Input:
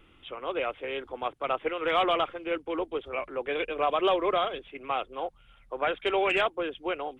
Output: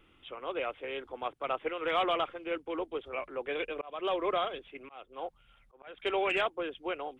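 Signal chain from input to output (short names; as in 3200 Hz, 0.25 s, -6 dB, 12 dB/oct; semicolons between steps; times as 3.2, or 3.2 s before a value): low shelf 120 Hz -3 dB; 3.6–5.98 auto swell 0.397 s; gain -4 dB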